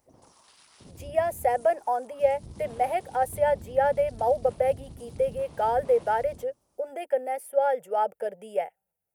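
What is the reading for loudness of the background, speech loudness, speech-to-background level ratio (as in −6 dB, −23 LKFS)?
−46.5 LKFS, −27.0 LKFS, 19.5 dB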